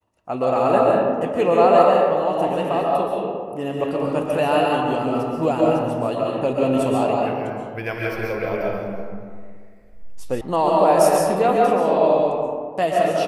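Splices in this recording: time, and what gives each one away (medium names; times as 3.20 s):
10.41 s: sound stops dead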